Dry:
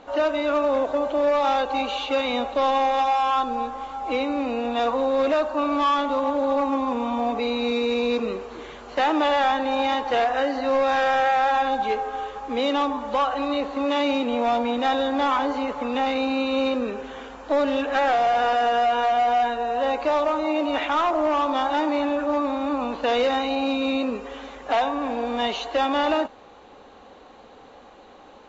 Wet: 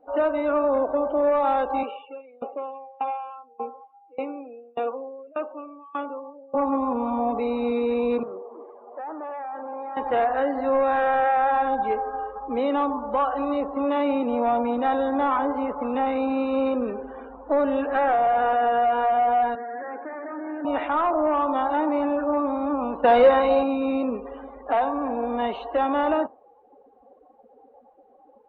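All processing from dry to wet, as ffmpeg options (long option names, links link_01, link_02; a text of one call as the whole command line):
ffmpeg -i in.wav -filter_complex "[0:a]asettb=1/sr,asplit=3[link_01][link_02][link_03];[link_01]atrim=end=1.834[link_04];[link_02]atrim=start=1.83:end=6.55,asetpts=PTS-STARTPTS,afade=type=in:duration=0.004:curve=qsin,afade=type=out:start_time=4.716:duration=0.004:curve=qsin,highpass=300,equalizer=frequency=440:width_type=q:width=4:gain=6,equalizer=frequency=630:width_type=q:width=4:gain=-5,equalizer=frequency=970:width_type=q:width=4:gain=-6,equalizer=frequency=1800:width_type=q:width=4:gain=-7,equalizer=frequency=2600:width_type=q:width=4:gain=5,lowpass=frequency=3200:width=0.5412,lowpass=frequency=3200:width=1.3066,aeval=exprs='val(0)*pow(10,-25*if(lt(mod(1.7*n/s,1),2*abs(1.7)/1000),1-mod(1.7*n/s,1)/(2*abs(1.7)/1000),(mod(1.7*n/s,1)-2*abs(1.7)/1000)/(1-2*abs(1.7)/1000))/20)':channel_layout=same[link_05];[link_03]atrim=start=6.546[link_06];[link_04][link_05]acrossfade=duration=0.004:curve1=hsin:curve2=qsin[link_07];[link_07][link_06]acrossfade=duration=0.004:curve1=qsin:curve2=hsin,asettb=1/sr,asplit=3[link_08][link_09][link_10];[link_08]atrim=end=8.234[link_11];[link_09]atrim=start=8.23:end=9.97,asetpts=PTS-STARTPTS,afade=type=in:duration=0.004:curve=qsin,afade=type=out:start_time=1.736:duration=0.004:curve=qsin,asoftclip=type=hard:threshold=-30.5dB,bandpass=frequency=710:width_type=q:width=0.72[link_12];[link_10]atrim=start=9.966[link_13];[link_11][link_12]acrossfade=duration=0.004:curve1=hsin:curve2=qsin[link_14];[link_14][link_13]acrossfade=duration=0.004:curve1=qsin:curve2=hsin,asettb=1/sr,asplit=3[link_15][link_16][link_17];[link_15]atrim=end=19.554[link_18];[link_16]atrim=start=19.55:end=20.65,asetpts=PTS-STARTPTS,afade=type=in:duration=0.004:curve=qsin,afade=type=out:start_time=1.096:duration=0.004:curve=qsin,bandreject=frequency=1200:width=12,aeval=exprs='(tanh(25.1*val(0)+0.25)-tanh(0.25))/25.1':channel_layout=same,highpass=260,equalizer=frequency=280:width_type=q:width=4:gain=5,equalizer=frequency=580:width_type=q:width=4:gain=-6,equalizer=frequency=970:width_type=q:width=4:gain=-6,equalizer=frequency=1700:width_type=q:width=4:gain=6,lowpass=frequency=2100:width=0.5412,lowpass=frequency=2100:width=1.3066[link_19];[link_17]atrim=start=20.646[link_20];[link_18][link_19]acrossfade=duration=0.004:curve1=hsin:curve2=qsin[link_21];[link_21][link_20]acrossfade=duration=0.004:curve1=qsin:curve2=hsin,asettb=1/sr,asplit=3[link_22][link_23][link_24];[link_22]atrim=end=23.044[link_25];[link_23]atrim=start=23.04:end=23.63,asetpts=PTS-STARTPTS,afade=type=in:duration=0.004:curve=qsin,afade=type=out:start_time=0.586:duration=0.004:curve=qsin,equalizer=frequency=2400:width=4.5:gain=-2,aecho=1:1:5.5:0.54,atrim=end_sample=26019,acontrast=42[link_26];[link_24]atrim=start=23.626[link_27];[link_25][link_26]acrossfade=duration=0.004:curve1=hsin:curve2=qsin[link_28];[link_28][link_27]acrossfade=duration=0.004:curve1=qsin:curve2=hsin,afftdn=noise_reduction=23:noise_floor=-38,lowpass=1600" out.wav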